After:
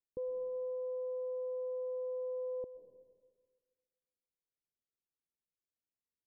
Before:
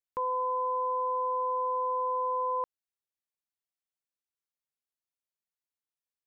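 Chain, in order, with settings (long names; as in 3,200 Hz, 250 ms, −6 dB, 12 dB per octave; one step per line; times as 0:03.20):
Butterworth low-pass 520 Hz 36 dB per octave
convolution reverb RT60 1.6 s, pre-delay 90 ms, DRR 9.5 dB
level +1 dB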